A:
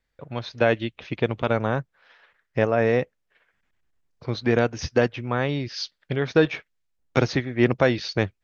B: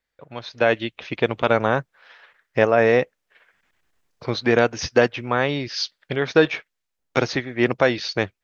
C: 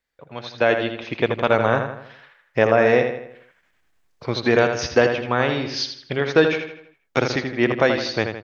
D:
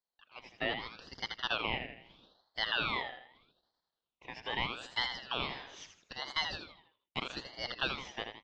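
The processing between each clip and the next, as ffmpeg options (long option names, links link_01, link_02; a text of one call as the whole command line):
ffmpeg -i in.wav -af "lowshelf=frequency=230:gain=-10.5,dynaudnorm=framelen=400:gausssize=3:maxgain=13.5dB,volume=-1dB" out.wav
ffmpeg -i in.wav -filter_complex "[0:a]asplit=2[link_01][link_02];[link_02]adelay=81,lowpass=frequency=4900:poles=1,volume=-6.5dB,asplit=2[link_03][link_04];[link_04]adelay=81,lowpass=frequency=4900:poles=1,volume=0.47,asplit=2[link_05][link_06];[link_06]adelay=81,lowpass=frequency=4900:poles=1,volume=0.47,asplit=2[link_07][link_08];[link_08]adelay=81,lowpass=frequency=4900:poles=1,volume=0.47,asplit=2[link_09][link_10];[link_10]adelay=81,lowpass=frequency=4900:poles=1,volume=0.47,asplit=2[link_11][link_12];[link_12]adelay=81,lowpass=frequency=4900:poles=1,volume=0.47[link_13];[link_01][link_03][link_05][link_07][link_09][link_11][link_13]amix=inputs=7:normalize=0" out.wav
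ffmpeg -i in.wav -af "highpass=780,lowpass=2100,aeval=exprs='val(0)*sin(2*PI*1900*n/s+1900*0.35/0.79*sin(2*PI*0.79*n/s))':channel_layout=same,volume=-8.5dB" out.wav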